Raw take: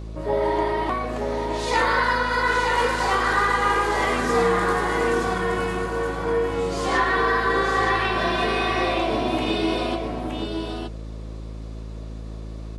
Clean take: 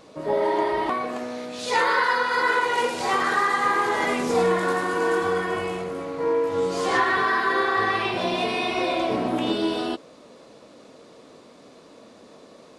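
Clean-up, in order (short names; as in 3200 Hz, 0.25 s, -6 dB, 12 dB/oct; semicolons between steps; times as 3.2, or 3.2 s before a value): clip repair -11 dBFS; de-hum 54.3 Hz, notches 7; inverse comb 0.919 s -5 dB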